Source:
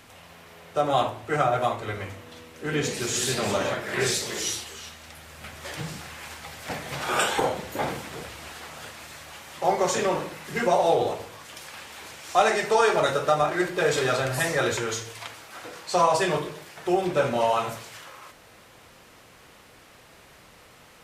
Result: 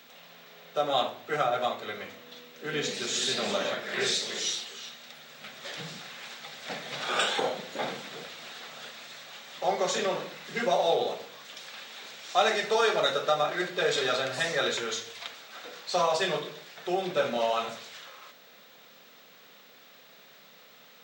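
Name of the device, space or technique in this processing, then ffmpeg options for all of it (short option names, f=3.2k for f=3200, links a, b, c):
old television with a line whistle: -af "highpass=f=180:w=0.5412,highpass=f=180:w=1.3066,equalizer=f=320:t=q:w=4:g=-8,equalizer=f=950:t=q:w=4:g=-6,equalizer=f=3.7k:t=q:w=4:g=8,lowpass=f=7.2k:w=0.5412,lowpass=f=7.2k:w=1.3066,aeval=exprs='val(0)+0.00178*sin(2*PI*15734*n/s)':c=same,volume=-3dB"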